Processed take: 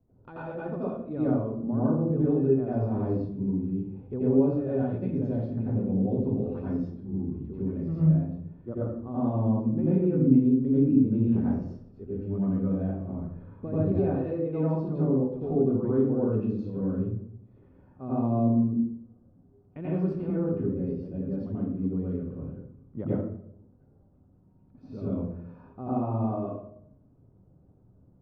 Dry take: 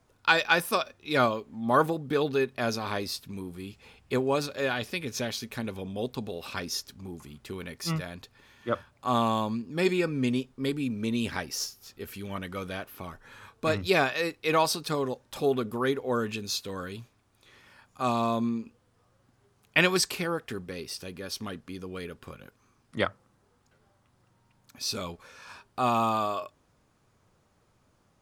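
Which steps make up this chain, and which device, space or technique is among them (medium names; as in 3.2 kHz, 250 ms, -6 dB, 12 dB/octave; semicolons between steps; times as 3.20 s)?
television next door (compression 5:1, threshold -26 dBFS, peak gain reduction 9.5 dB; low-pass 340 Hz 12 dB/octave; reverberation RT60 0.70 s, pre-delay 82 ms, DRR -9 dB)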